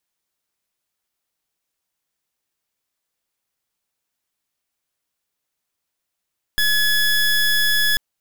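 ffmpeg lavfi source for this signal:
ffmpeg -f lavfi -i "aevalsrc='0.141*(2*lt(mod(1700*t,1),0.22)-1)':duration=1.39:sample_rate=44100" out.wav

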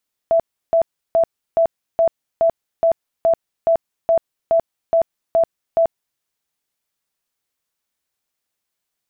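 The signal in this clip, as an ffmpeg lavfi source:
ffmpeg -f lavfi -i "aevalsrc='0.282*sin(2*PI*663*mod(t,0.42))*lt(mod(t,0.42),58/663)':duration=5.88:sample_rate=44100" out.wav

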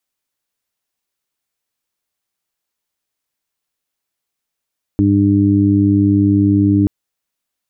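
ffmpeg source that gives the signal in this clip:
ffmpeg -f lavfi -i "aevalsrc='0.188*sin(2*PI*100*t)+0.158*sin(2*PI*200*t)+0.266*sin(2*PI*300*t)+0.0335*sin(2*PI*400*t)':duration=1.88:sample_rate=44100" out.wav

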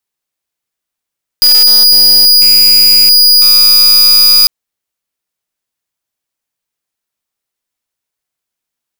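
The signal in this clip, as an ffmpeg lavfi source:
ffmpeg -f lavfi -i "aevalsrc='0.562*(2*lt(mod(4900*t,1),0.5)-1)':duration=3.05:sample_rate=44100" out.wav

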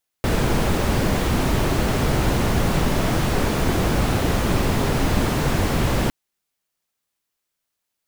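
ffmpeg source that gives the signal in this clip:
ffmpeg -f lavfi -i "anoisesrc=color=brown:amplitude=0.525:duration=5.86:sample_rate=44100:seed=1" out.wav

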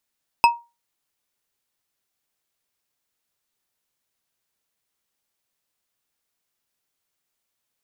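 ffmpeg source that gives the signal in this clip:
ffmpeg -f lavfi -i "aevalsrc='0.447*pow(10,-3*t/0.26)*sin(2*PI*942*t)+0.224*pow(10,-3*t/0.128)*sin(2*PI*2597.1*t)+0.112*pow(10,-3*t/0.08)*sin(2*PI*5090.6*t)+0.0562*pow(10,-3*t/0.056)*sin(2*PI*8414.9*t)+0.0282*pow(10,-3*t/0.042)*sin(2*PI*12566.3*t)':duration=0.89:sample_rate=44100" out.wav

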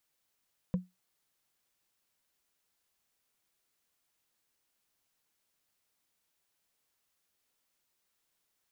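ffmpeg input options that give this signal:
ffmpeg -f lavfi -i "aevalsrc='0.075*pow(10,-3*t/0.2)*sin(2*PI*182*t)+0.0237*pow(10,-3*t/0.059)*sin(2*PI*501.8*t)+0.0075*pow(10,-3*t/0.026)*sin(2*PI*983.5*t)+0.00237*pow(10,-3*t/0.014)*sin(2*PI*1625.8*t)+0.00075*pow(10,-3*t/0.009)*sin(2*PI*2427.9*t)':duration=0.45:sample_rate=44100" out.wav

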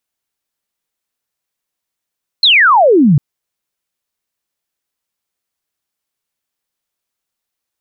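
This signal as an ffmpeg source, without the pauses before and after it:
ffmpeg -f lavfi -i "aevalsrc='0.562*clip(t/0.002,0,1)*clip((0.75-t)/0.002,0,1)*sin(2*PI*4300*0.75/log(130/4300)*(exp(log(130/4300)*t/0.75)-1))':duration=0.75:sample_rate=44100" out.wav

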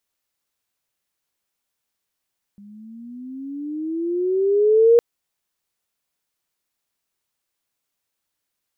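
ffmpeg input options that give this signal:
ffmpeg -f lavfi -i "aevalsrc='pow(10,(-8.5+32*(t/2.41-1))/20)*sin(2*PI*200*2.41/(15*log(2)/12)*(exp(15*log(2)/12*t/2.41)-1))':duration=2.41:sample_rate=44100" out.wav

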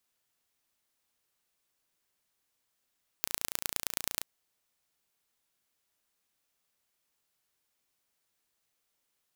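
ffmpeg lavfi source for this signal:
ffmpeg -f lavfi -i "aevalsrc='0.794*eq(mod(n,1537),0)*(0.5+0.5*eq(mod(n,4611),0))':duration=1.01:sample_rate=44100" out.wav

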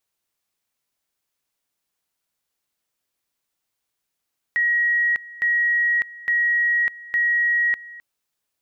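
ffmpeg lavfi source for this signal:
ffmpeg -f lavfi -i "aevalsrc='pow(10,(-16.5-20*gte(mod(t,0.86),0.6))/20)*sin(2*PI*1900*t)':duration=3.44:sample_rate=44100" out.wav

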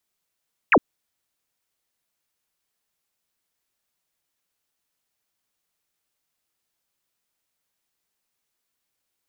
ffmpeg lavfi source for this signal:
ffmpeg -f lavfi -i "aevalsrc='0.282*clip(t/0.002,0,1)*clip((0.06-t)/0.002,0,1)*sin(2*PI*2900*0.06/log(200/2900)*(exp(log(200/2900)*t/0.06)-1))':duration=0.06:sample_rate=44100" out.wav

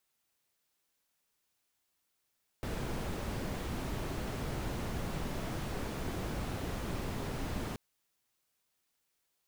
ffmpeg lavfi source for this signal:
ffmpeg -f lavfi -i "anoisesrc=color=brown:amplitude=0.07:duration=5.13:sample_rate=44100:seed=1" out.wav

